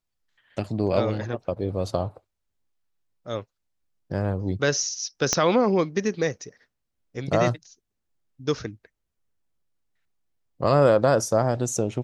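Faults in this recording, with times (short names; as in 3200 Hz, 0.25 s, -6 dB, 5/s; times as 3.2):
5.33 pop -7 dBFS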